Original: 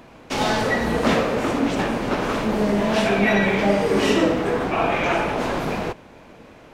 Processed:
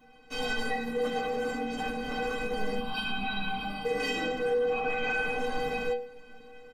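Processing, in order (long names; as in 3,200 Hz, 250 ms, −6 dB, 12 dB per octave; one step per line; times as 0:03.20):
0:02.78–0:03.85: phaser with its sweep stopped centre 1,900 Hz, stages 6
0:04.59–0:05.10: high-shelf EQ 8,000 Hz −5.5 dB
automatic gain control gain up to 4 dB
low-shelf EQ 88 Hz +8.5 dB
stiff-string resonator 230 Hz, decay 0.55 s, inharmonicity 0.03
brickwall limiter −26.5 dBFS, peak gain reduction 9 dB
comb filter 6.7 ms, depth 88%
level +3.5 dB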